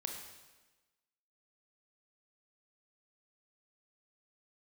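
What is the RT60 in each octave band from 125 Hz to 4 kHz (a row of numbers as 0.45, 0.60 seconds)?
1.1, 1.2, 1.2, 1.2, 1.2, 1.1 seconds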